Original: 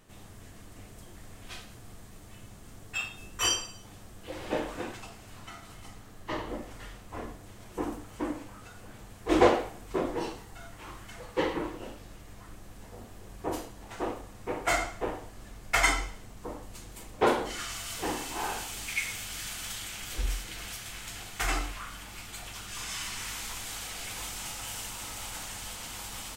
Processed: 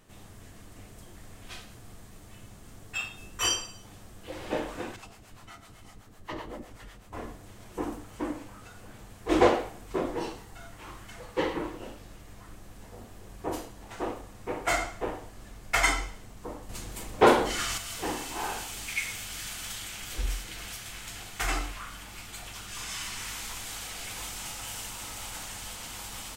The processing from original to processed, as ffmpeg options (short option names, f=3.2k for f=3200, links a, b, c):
-filter_complex "[0:a]asettb=1/sr,asplit=3[a][b][c];[a]atrim=end=4.964[d];[b]atrim=start=4.96:end=7.13,asetpts=PTS-STARTPTS,afade=t=in:d=0.004:c=qsin,afade=t=out:st=2.166:d=0.004:c=qsin,acrossover=split=460[e][f];[e]aeval=exprs='val(0)*(1-0.7/2+0.7/2*cos(2*PI*7.9*n/s))':c=same[g];[f]aeval=exprs='val(0)*(1-0.7/2-0.7/2*cos(2*PI*7.9*n/s))':c=same[h];[g][h]amix=inputs=2:normalize=0[i];[c]atrim=start=7.126[j];[d][i]acrossfade=d=0.004:c1=hsin:c2=qsin[k];[k][j]acrossfade=d=0.004:c1=qsin:c2=hsin,asettb=1/sr,asplit=3[l][m][n];[l]atrim=end=16.694[o];[m]atrim=start=16.69:end=17.78,asetpts=PTS-STARTPTS,afade=t=in:d=0.004:c=qsin,afade=t=out:st=1.086:d=0.004:c=qsin,acontrast=52[p];[n]atrim=start=17.776[q];[o][p]acrossfade=d=0.004:c1=hsin:c2=qsin[r];[r][q]acrossfade=d=0.004:c1=qsin:c2=hsin"